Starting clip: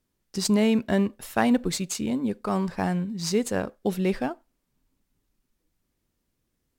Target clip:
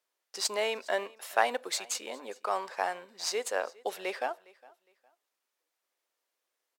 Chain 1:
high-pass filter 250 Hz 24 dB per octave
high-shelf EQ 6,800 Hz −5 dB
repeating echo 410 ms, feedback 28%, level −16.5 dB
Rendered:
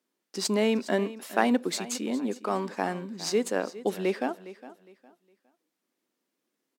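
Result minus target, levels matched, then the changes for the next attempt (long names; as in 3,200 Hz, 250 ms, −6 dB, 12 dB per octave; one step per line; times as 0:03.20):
250 Hz band +16.5 dB; echo-to-direct +7 dB
change: high-pass filter 530 Hz 24 dB per octave
change: repeating echo 410 ms, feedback 28%, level −23.5 dB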